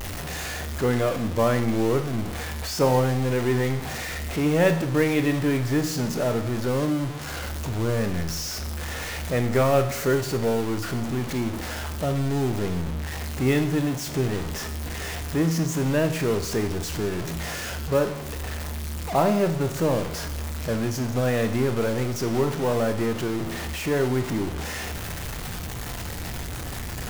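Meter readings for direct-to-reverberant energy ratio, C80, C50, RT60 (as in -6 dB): 7.0 dB, 13.0 dB, 10.5 dB, 0.75 s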